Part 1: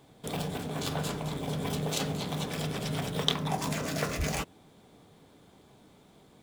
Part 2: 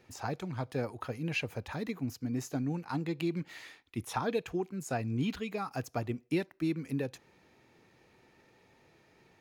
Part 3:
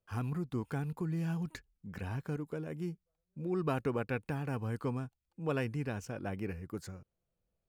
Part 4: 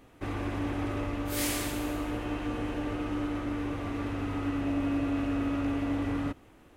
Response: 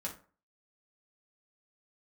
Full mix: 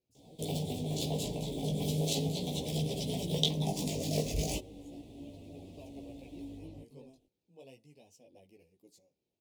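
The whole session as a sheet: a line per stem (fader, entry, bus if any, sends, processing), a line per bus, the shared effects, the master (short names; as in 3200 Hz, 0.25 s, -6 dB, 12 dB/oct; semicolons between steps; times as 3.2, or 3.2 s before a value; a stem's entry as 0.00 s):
+2.5 dB, 0.15 s, no send, dry
-19.0 dB, 0.00 s, no send, dry
-8.5 dB, 2.10 s, send -14 dB, HPF 870 Hz 6 dB/oct
-13.5 dB, 0.50 s, no send, dry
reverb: on, RT60 0.40 s, pre-delay 3 ms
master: Chebyshev band-stop 600–3300 Hz, order 2; chorus voices 2, 0.36 Hz, delay 16 ms, depth 4.1 ms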